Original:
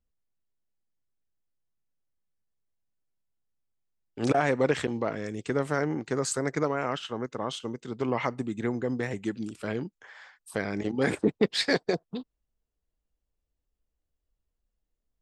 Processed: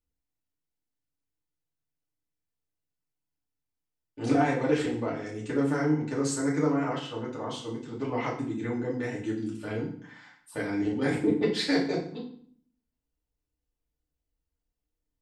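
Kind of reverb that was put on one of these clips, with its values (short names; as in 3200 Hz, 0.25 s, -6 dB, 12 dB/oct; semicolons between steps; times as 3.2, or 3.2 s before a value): FDN reverb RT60 0.53 s, low-frequency decay 1.45×, high-frequency decay 0.9×, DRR -6 dB; gain -9 dB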